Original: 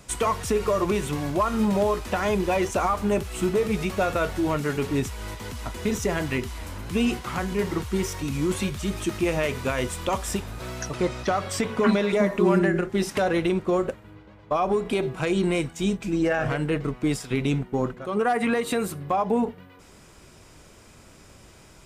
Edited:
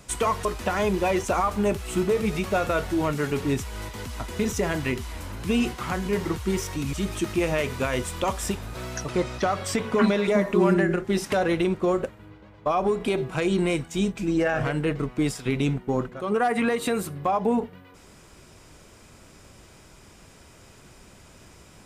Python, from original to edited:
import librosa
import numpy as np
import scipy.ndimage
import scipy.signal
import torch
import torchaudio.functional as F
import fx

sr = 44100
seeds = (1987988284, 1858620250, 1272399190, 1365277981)

y = fx.edit(x, sr, fx.cut(start_s=0.45, length_s=1.46),
    fx.cut(start_s=8.39, length_s=0.39), tone=tone)